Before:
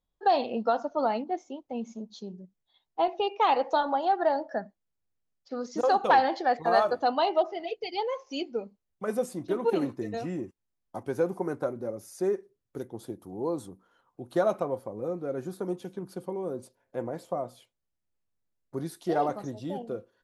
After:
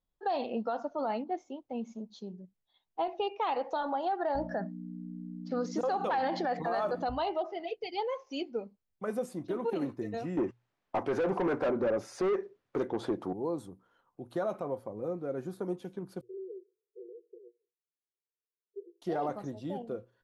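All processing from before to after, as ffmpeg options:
-filter_complex "[0:a]asettb=1/sr,asplit=3[a][b][c];[a]atrim=end=4.354[d];[b]atrim=start=4.35:end=7.09,asetpts=PTS-STARTPTS,afade=t=in:d=0.004:c=qsin,afade=t=out:st=2.736:d=0.004:c=qsin,acontrast=52,aeval=exprs='val(0)+0.0316*(sin(2*PI*60*n/s)+sin(2*PI*2*60*n/s)/2+sin(2*PI*3*60*n/s)/3+sin(2*PI*4*60*n/s)/4+sin(2*PI*5*60*n/s)/5)':c=same[e];[c]atrim=start=7.086[f];[d][e]acrossfade=d=0.004:c1=hsin:c2=qsin[g];[g][f]acrossfade=d=0.004:c1=qsin:c2=hsin,asettb=1/sr,asplit=3[h][i][j];[h]atrim=end=10.374[k];[i]atrim=start=10.37:end=13.33,asetpts=PTS-STARTPTS,afade=t=in:d=0.004:c=qsin,afade=t=out:st=2.956:d=0.004:c=qsin,lowpass=7.1k,asplit=2[l][m];[m]highpass=f=720:p=1,volume=27dB,asoftclip=type=tanh:threshold=-15dB[n];[l][n]amix=inputs=2:normalize=0,lowpass=f=1.7k:p=1,volume=-6dB[o];[j]atrim=start=13.326[p];[k][o]acrossfade=d=0.004:c1=hsin:c2=qsin[q];[q][p]acrossfade=d=0.004:c1=qsin:c2=hsin,asettb=1/sr,asplit=3[r][s][t];[r]atrim=end=16.214[u];[s]atrim=start=16.21:end=19.02,asetpts=PTS-STARTPTS,afade=t=in:d=0.004:c=qsin,afade=t=out:st=2.806:d=0.004:c=qsin,asuperpass=centerf=410:order=20:qfactor=2.9,aemphasis=mode=production:type=riaa[v];[t]atrim=start=19.016[w];[u][v]acrossfade=d=0.004:c1=hsin:c2=qsin[x];[x][w]acrossfade=d=0.004:c1=qsin:c2=hsin,bass=f=250:g=1,treble=f=4k:g=-5,bandreject=f=60:t=h:w=6,bandreject=f=120:t=h:w=6,alimiter=limit=-20.5dB:level=0:latency=1:release=52,volume=-3dB"

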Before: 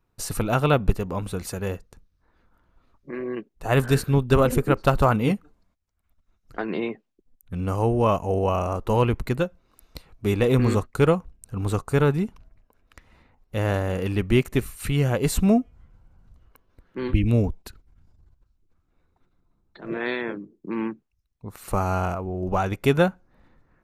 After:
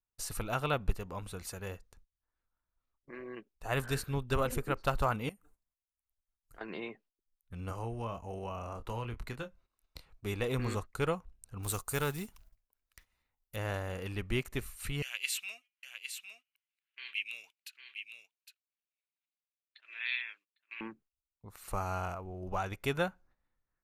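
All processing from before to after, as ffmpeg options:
-filter_complex "[0:a]asettb=1/sr,asplit=3[a][b][c];[a]atrim=end=5.294[d];[b]atrim=start=5.29:end=6.61,asetpts=PTS-STARTPTS,afade=t=in:d=0.004:c=qsin,afade=t=out:st=1.316:d=0.004:c=qsin,highshelf=f=6.7k:t=q:w=1.5:g=11.5,acompressor=threshold=-42dB:ratio=3:attack=3.2:release=140:knee=1:detection=peak[e];[c]atrim=start=6.606[f];[d][e]acrossfade=d=0.004:c1=hsin:c2=qsin[g];[g][f]acrossfade=d=0.004:c1=qsin:c2=hsin,asettb=1/sr,asplit=3[h][i][j];[h]atrim=end=7.704[k];[i]atrim=start=7.7:end=10.1,asetpts=PTS-STARTPTS,afade=t=in:d=0.004:c=qsin,afade=t=out:st=2.396:d=0.004:c=qsin,highshelf=f=9.9k:g=-5.5,acrossover=split=380|780[l][m][n];[l]acompressor=threshold=-25dB:ratio=4[o];[m]acompressor=threshold=-36dB:ratio=4[p];[n]acompressor=threshold=-34dB:ratio=4[q];[o][p][q]amix=inputs=3:normalize=0,asplit=2[r][s];[s]adelay=26,volume=-9dB[t];[r][t]amix=inputs=2:normalize=0,atrim=end_sample=105840[u];[j]atrim=start=10.096[v];[k][u]acrossfade=d=0.004:c1=hsin:c2=qsin[w];[w][v]acrossfade=d=0.004:c1=qsin:c2=hsin,asettb=1/sr,asplit=3[x][y][z];[x]atrim=end=11.634[aa];[y]atrim=start=11.63:end=13.56,asetpts=PTS-STARTPTS,afade=t=in:d=0.004:c=qsin,afade=t=out:st=1.926:d=0.004:c=qsin,aemphasis=mode=production:type=75fm,acrusher=bits=6:mode=log:mix=0:aa=0.000001[ab];[z]atrim=start=13.556[ac];[aa][ab]acrossfade=d=0.004:c1=hsin:c2=qsin[ad];[ad][ac]acrossfade=d=0.004:c1=qsin:c2=hsin,asettb=1/sr,asplit=3[ae][af][ag];[ae]atrim=end=15.024[ah];[af]atrim=start=15.02:end=20.81,asetpts=PTS-STARTPTS,afade=t=in:d=0.004:c=qsin,afade=t=out:st=5.786:d=0.004:c=qsin,highpass=f=2.6k:t=q:w=4,aecho=1:1:807:0.422,atrim=end_sample=255339[ai];[ag]atrim=start=20.806[aj];[ah][ai]acrossfade=d=0.004:c1=hsin:c2=qsin[ak];[ak][aj]acrossfade=d=0.004:c1=qsin:c2=hsin,agate=range=-15dB:threshold=-50dB:ratio=16:detection=peak,equalizer=f=230:t=o:w=3:g=-8.5,volume=-7.5dB"

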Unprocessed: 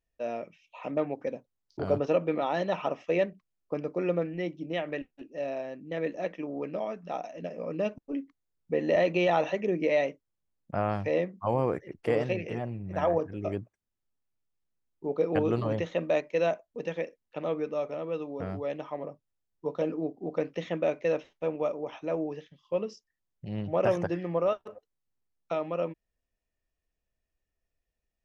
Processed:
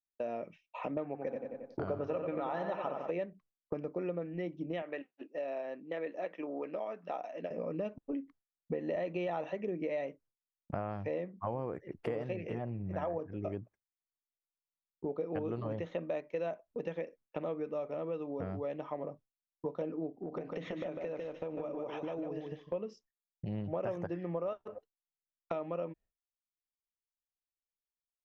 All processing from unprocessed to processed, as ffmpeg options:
-filter_complex "[0:a]asettb=1/sr,asplit=3[a][b][c];[a]atrim=end=1.054[d];[b]atrim=start=1.05:end=3.11,asetpts=PTS-STARTPTS,afade=t=in:d=0.004:c=qsin,afade=t=out:st=2.056:d=0.004:c=qsin,equalizer=f=1.3k:t=o:w=1.2:g=5.5,asplit=2[e][f];[f]adelay=91,lowpass=f=4.1k:p=1,volume=-6dB,asplit=2[g][h];[h]adelay=91,lowpass=f=4.1k:p=1,volume=0.53,asplit=2[i][j];[j]adelay=91,lowpass=f=4.1k:p=1,volume=0.53,asplit=2[k][l];[l]adelay=91,lowpass=f=4.1k:p=1,volume=0.53,asplit=2[m][n];[n]adelay=91,lowpass=f=4.1k:p=1,volume=0.53,asplit=2[o][p];[p]adelay=91,lowpass=f=4.1k:p=1,volume=0.53,asplit=2[q][r];[r]adelay=91,lowpass=f=4.1k:p=1,volume=0.53[s];[e][g][i][k][m][o][q][s]amix=inputs=8:normalize=0,atrim=end_sample=90846[t];[c]atrim=start=3.106[u];[d][t]acrossfade=d=0.004:c1=hsin:c2=qsin[v];[v][u]acrossfade=d=0.004:c1=qsin:c2=hsin,asettb=1/sr,asplit=3[w][x][y];[w]atrim=end=4.824[z];[x]atrim=start=4.82:end=7.51,asetpts=PTS-STARTPTS,afade=t=in:d=0.004:c=qsin,afade=t=out:st=2.686:d=0.004:c=qsin,highpass=210,lowpass=5.5k,lowshelf=f=330:g=-10.5[aa];[y]atrim=start=7.506[ab];[z][aa]acrossfade=d=0.004:c1=hsin:c2=qsin[ac];[ac][ab]acrossfade=d=0.004:c1=qsin:c2=hsin,asettb=1/sr,asplit=3[ad][ae][af];[ad]atrim=end=20.134[ag];[ae]atrim=start=20.13:end=22.73,asetpts=PTS-STARTPTS,afade=t=in:d=0.004:c=qsin,afade=t=out:st=2.596:d=0.004:c=qsin,acompressor=threshold=-37dB:ratio=6:attack=3.2:release=140:knee=1:detection=peak,aecho=1:1:150|300|450:0.631|0.107|0.0182,atrim=end_sample=114660[ah];[af]atrim=start=22.726[ai];[ag][ah]acrossfade=d=0.004:c1=hsin:c2=qsin[aj];[aj][ai]acrossfade=d=0.004:c1=qsin:c2=hsin,agate=range=-33dB:threshold=-49dB:ratio=3:detection=peak,highshelf=f=3.1k:g=-12,acompressor=threshold=-41dB:ratio=4,volume=5dB"

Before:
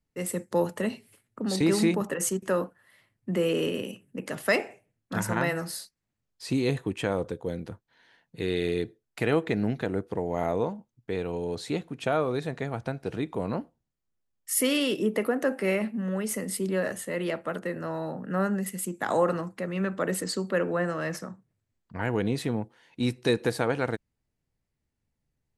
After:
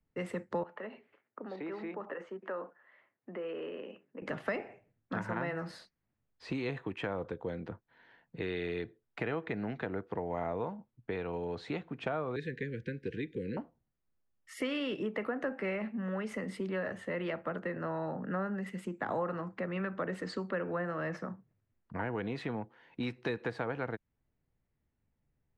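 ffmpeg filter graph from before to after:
-filter_complex "[0:a]asettb=1/sr,asplit=3[a][b][c];[a]atrim=end=0.634[d];[b]atrim=start=0.63:end=4.22,asetpts=PTS-STARTPTS,afade=t=in:d=0.004:c=qsin,afade=t=out:st=3.586:d=0.004:c=qsin,acompressor=threshold=-38dB:ratio=2:attack=3.2:release=140:knee=1:detection=peak,highpass=420,lowpass=2.4k[e];[c]atrim=start=4.216[f];[d][e]acrossfade=d=0.004:c1=hsin:c2=qsin[g];[g][f]acrossfade=d=0.004:c1=qsin:c2=hsin,asettb=1/sr,asplit=3[h][i][j];[h]atrim=end=12.364[k];[i]atrim=start=12.36:end=13.57,asetpts=PTS-STARTPTS,afade=t=in:d=0.004:c=qsin,afade=t=out:st=1.206:d=0.004:c=qsin,asuperstop=centerf=900:order=20:qfactor=0.86,highshelf=f=10k:g=9[l];[j]atrim=start=13.566[m];[k][l]acrossfade=d=0.004:c1=hsin:c2=qsin[n];[n][m]acrossfade=d=0.004:c1=qsin:c2=hsin,lowpass=2.2k,acrossover=split=170|770[o][p][q];[o]acompressor=threshold=-48dB:ratio=4[r];[p]acompressor=threshold=-39dB:ratio=4[s];[q]acompressor=threshold=-39dB:ratio=4[t];[r][s][t]amix=inputs=3:normalize=0,volume=1dB"

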